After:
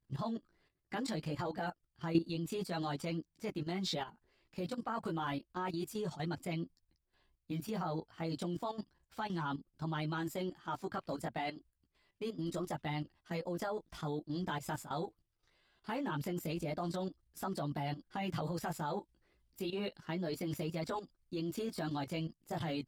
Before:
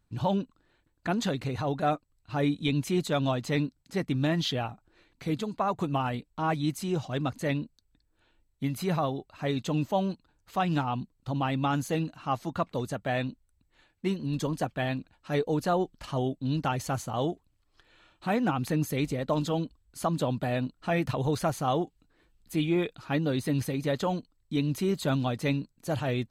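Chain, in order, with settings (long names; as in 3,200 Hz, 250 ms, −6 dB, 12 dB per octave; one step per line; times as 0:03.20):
multi-voice chorus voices 2, 0.27 Hz, delay 17 ms, depth 4.1 ms
speed change +15%
output level in coarse steps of 12 dB
level −1 dB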